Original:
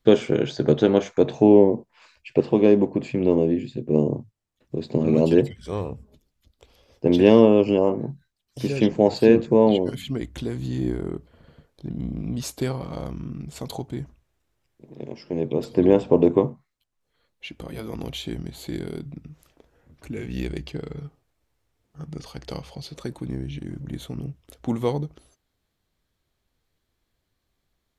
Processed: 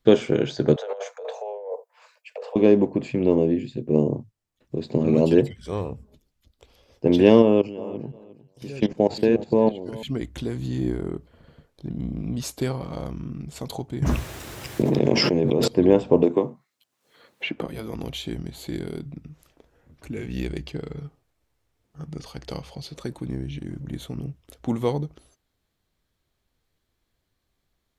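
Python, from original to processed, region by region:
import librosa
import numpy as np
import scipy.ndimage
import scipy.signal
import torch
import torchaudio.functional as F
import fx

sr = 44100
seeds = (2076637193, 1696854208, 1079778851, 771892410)

y = fx.chain(x, sr, fx.steep_highpass(hz=460.0, slope=96),
    fx.peak_eq(hz=3400.0, db=-11.0, octaves=2.9),
    fx.over_compress(threshold_db=-32.0, ratio=-1.0), at=(0.76, 2.56))
y = fx.chain(y, sr, fx.level_steps(step_db=17),
    fx.echo_feedback(ms=356, feedback_pct=24, wet_db=-18), at=(7.42, 10.03))
y = fx.chain(y, sr, fx.highpass(hz=87.0, slope=12),
    fx.env_flatten(amount_pct=100), at=(14.02, 15.68))
y = fx.chain(y, sr, fx.highpass(hz=190.0, slope=12),
    fx.band_squash(depth_pct=70), at=(16.23, 17.66))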